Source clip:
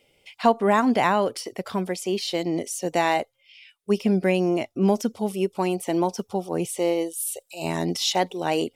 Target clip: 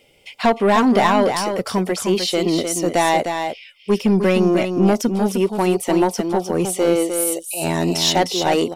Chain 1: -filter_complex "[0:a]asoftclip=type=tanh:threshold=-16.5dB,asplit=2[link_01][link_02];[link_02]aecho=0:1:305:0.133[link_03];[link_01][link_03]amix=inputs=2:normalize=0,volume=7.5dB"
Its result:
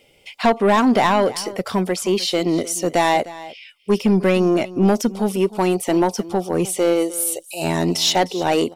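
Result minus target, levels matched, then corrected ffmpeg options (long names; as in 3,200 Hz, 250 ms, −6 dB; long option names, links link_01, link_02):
echo-to-direct −11 dB
-filter_complex "[0:a]asoftclip=type=tanh:threshold=-16.5dB,asplit=2[link_01][link_02];[link_02]aecho=0:1:305:0.473[link_03];[link_01][link_03]amix=inputs=2:normalize=0,volume=7.5dB"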